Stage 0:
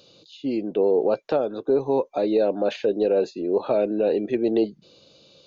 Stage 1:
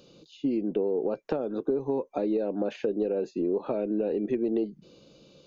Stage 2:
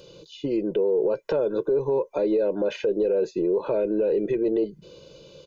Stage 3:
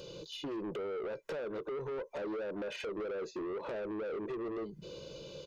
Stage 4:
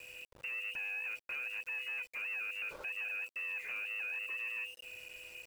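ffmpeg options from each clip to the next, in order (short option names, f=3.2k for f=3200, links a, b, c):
-af "lowshelf=f=400:g=10.5,acompressor=threshold=-21dB:ratio=6,equalizer=f=100:t=o:w=0.67:g=-12,equalizer=f=630:t=o:w=0.67:g=-4,equalizer=f=4k:t=o:w=0.67:g=-7,volume=-2dB"
-af "aecho=1:1:2:0.76,alimiter=limit=-21.5dB:level=0:latency=1:release=16,volume=5.5dB"
-af "acompressor=threshold=-30dB:ratio=6,asoftclip=type=tanh:threshold=-36.5dB,volume=1dB"
-af "lowpass=f=2.6k:t=q:w=0.5098,lowpass=f=2.6k:t=q:w=0.6013,lowpass=f=2.6k:t=q:w=0.9,lowpass=f=2.6k:t=q:w=2.563,afreqshift=-3000,aeval=exprs='val(0)+0.001*sin(2*PI*500*n/s)':c=same,aeval=exprs='val(0)*gte(abs(val(0)),0.00316)':c=same,volume=-2dB"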